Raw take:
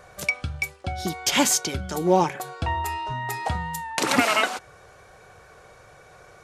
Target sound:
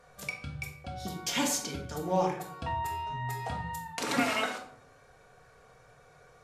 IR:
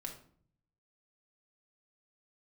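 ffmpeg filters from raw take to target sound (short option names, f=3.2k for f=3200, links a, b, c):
-filter_complex "[1:a]atrim=start_sample=2205,asetrate=39690,aresample=44100[a];[0:a][a]afir=irnorm=-1:irlink=0,volume=-7dB"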